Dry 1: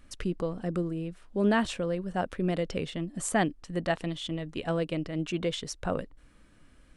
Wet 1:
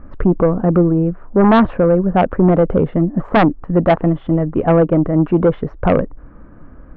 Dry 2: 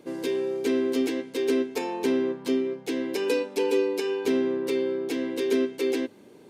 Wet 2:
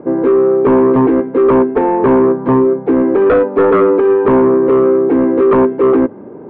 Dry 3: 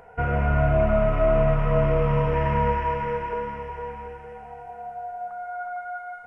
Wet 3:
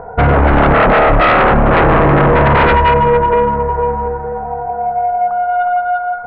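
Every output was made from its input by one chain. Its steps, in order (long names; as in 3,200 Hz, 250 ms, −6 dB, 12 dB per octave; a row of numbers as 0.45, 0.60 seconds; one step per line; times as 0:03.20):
low-pass filter 1,300 Hz 24 dB per octave
sine wavefolder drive 12 dB, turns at −9.5 dBFS
normalise the peak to −6 dBFS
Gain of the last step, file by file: +3.5, +3.5, +3.5 decibels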